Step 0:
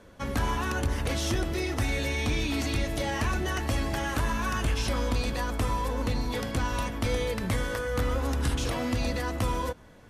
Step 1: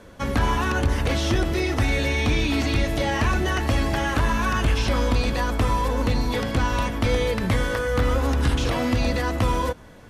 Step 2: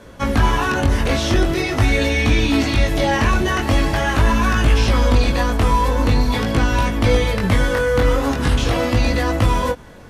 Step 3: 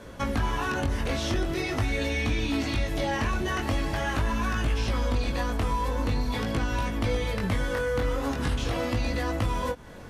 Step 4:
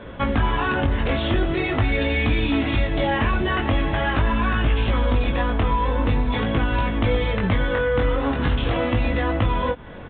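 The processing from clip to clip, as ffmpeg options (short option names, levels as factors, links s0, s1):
-filter_complex "[0:a]acrossover=split=4900[s0][s1];[s1]acompressor=threshold=0.00447:ratio=4:attack=1:release=60[s2];[s0][s2]amix=inputs=2:normalize=0,volume=2.11"
-af "flanger=delay=17.5:depth=4.9:speed=0.44,volume=2.51"
-af "acompressor=threshold=0.0398:ratio=2,volume=0.75"
-af "aresample=8000,aresample=44100,volume=2.11"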